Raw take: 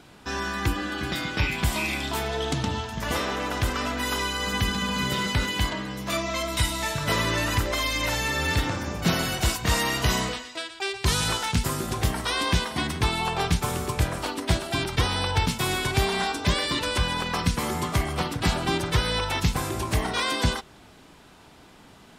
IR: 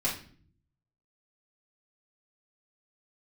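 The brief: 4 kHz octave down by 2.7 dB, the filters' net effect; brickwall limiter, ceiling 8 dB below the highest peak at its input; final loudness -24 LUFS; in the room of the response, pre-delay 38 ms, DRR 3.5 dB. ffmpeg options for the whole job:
-filter_complex "[0:a]equalizer=f=4000:t=o:g=-3.5,alimiter=limit=0.126:level=0:latency=1,asplit=2[s0][s1];[1:a]atrim=start_sample=2205,adelay=38[s2];[s1][s2]afir=irnorm=-1:irlink=0,volume=0.299[s3];[s0][s3]amix=inputs=2:normalize=0,volume=1.33"

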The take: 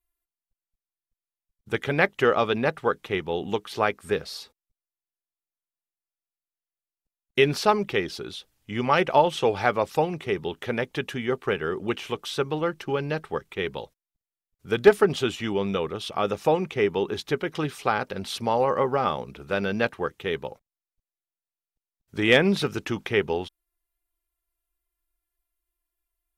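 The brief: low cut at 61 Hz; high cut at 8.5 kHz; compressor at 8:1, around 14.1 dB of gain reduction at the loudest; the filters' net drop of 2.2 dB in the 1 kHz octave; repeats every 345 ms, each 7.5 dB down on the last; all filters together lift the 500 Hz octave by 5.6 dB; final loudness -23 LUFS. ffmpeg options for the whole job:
-af "highpass=61,lowpass=8500,equalizer=f=500:t=o:g=8,equalizer=f=1000:t=o:g=-6,acompressor=threshold=0.126:ratio=8,aecho=1:1:345|690|1035|1380|1725:0.422|0.177|0.0744|0.0312|0.0131,volume=1.33"

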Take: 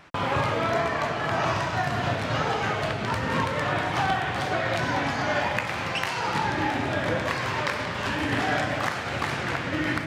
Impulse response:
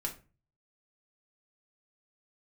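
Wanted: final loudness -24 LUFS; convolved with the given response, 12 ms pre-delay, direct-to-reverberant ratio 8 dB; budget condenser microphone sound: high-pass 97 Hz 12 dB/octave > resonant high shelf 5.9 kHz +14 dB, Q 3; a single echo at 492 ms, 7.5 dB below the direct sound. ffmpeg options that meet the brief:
-filter_complex "[0:a]aecho=1:1:492:0.422,asplit=2[s0][s1];[1:a]atrim=start_sample=2205,adelay=12[s2];[s1][s2]afir=irnorm=-1:irlink=0,volume=0.335[s3];[s0][s3]amix=inputs=2:normalize=0,highpass=97,highshelf=f=5900:t=q:w=3:g=14,volume=1.12"

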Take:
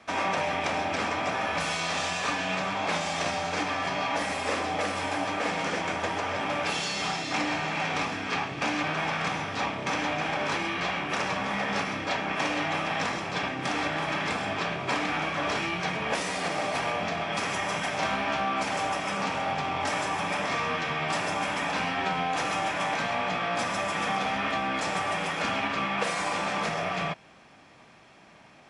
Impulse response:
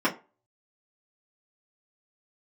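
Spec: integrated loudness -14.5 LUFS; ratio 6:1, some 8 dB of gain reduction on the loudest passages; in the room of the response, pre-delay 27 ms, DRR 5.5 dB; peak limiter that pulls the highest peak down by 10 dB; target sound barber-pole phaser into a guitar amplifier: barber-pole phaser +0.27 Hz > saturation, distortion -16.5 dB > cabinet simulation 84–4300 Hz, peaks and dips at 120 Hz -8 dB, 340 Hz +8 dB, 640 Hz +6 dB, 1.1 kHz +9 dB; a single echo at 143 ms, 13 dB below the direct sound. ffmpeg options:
-filter_complex "[0:a]acompressor=threshold=0.0224:ratio=6,alimiter=level_in=1.68:limit=0.0631:level=0:latency=1,volume=0.596,aecho=1:1:143:0.224,asplit=2[s0][s1];[1:a]atrim=start_sample=2205,adelay=27[s2];[s1][s2]afir=irnorm=-1:irlink=0,volume=0.112[s3];[s0][s3]amix=inputs=2:normalize=0,asplit=2[s4][s5];[s5]afreqshift=0.27[s6];[s4][s6]amix=inputs=2:normalize=1,asoftclip=threshold=0.02,highpass=84,equalizer=f=120:t=q:w=4:g=-8,equalizer=f=340:t=q:w=4:g=8,equalizer=f=640:t=q:w=4:g=6,equalizer=f=1100:t=q:w=4:g=9,lowpass=f=4300:w=0.5412,lowpass=f=4300:w=1.3066,volume=13.3"

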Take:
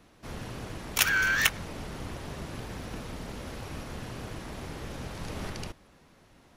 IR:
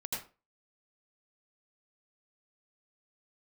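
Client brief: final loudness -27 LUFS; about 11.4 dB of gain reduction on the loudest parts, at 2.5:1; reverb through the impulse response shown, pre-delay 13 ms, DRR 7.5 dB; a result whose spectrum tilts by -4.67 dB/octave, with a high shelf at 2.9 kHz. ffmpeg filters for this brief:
-filter_complex "[0:a]highshelf=f=2900:g=-6.5,acompressor=threshold=0.0112:ratio=2.5,asplit=2[s0][s1];[1:a]atrim=start_sample=2205,adelay=13[s2];[s1][s2]afir=irnorm=-1:irlink=0,volume=0.355[s3];[s0][s3]amix=inputs=2:normalize=0,volume=5.01"

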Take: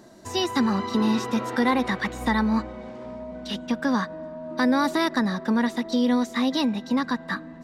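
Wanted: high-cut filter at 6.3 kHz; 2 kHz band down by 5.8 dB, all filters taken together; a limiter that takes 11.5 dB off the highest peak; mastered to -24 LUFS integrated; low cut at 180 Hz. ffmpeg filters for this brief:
-af "highpass=180,lowpass=6300,equalizer=f=2000:t=o:g=-7,volume=2.66,alimiter=limit=0.188:level=0:latency=1"

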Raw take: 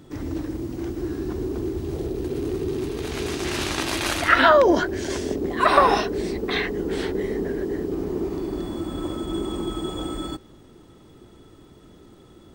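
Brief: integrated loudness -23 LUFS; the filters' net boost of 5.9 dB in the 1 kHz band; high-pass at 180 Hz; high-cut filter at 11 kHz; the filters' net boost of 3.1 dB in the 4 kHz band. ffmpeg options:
-af "highpass=180,lowpass=11000,equalizer=f=1000:t=o:g=7,equalizer=f=4000:t=o:g=3.5,volume=0.794"

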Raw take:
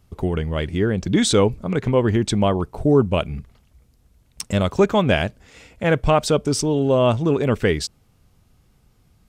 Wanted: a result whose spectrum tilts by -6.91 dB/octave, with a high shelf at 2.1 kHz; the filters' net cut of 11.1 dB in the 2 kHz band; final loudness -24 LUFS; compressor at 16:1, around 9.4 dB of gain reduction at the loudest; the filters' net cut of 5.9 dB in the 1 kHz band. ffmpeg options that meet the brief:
-af "equalizer=f=1000:t=o:g=-4,equalizer=f=2000:t=o:g=-8.5,highshelf=f=2100:g=-8.5,acompressor=threshold=0.0891:ratio=16,volume=1.5"

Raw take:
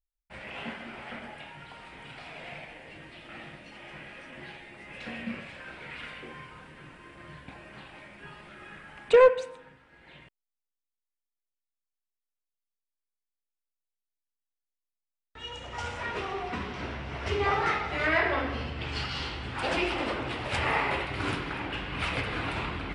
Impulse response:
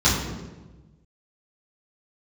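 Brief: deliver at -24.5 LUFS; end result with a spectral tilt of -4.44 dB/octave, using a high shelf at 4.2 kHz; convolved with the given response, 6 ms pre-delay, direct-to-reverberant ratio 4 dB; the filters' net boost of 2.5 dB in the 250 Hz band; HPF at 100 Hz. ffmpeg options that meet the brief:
-filter_complex "[0:a]highpass=100,equalizer=f=250:t=o:g=3.5,highshelf=f=4200:g=-6.5,asplit=2[s0][s1];[1:a]atrim=start_sample=2205,adelay=6[s2];[s1][s2]afir=irnorm=-1:irlink=0,volume=0.075[s3];[s0][s3]amix=inputs=2:normalize=0,volume=1.41"

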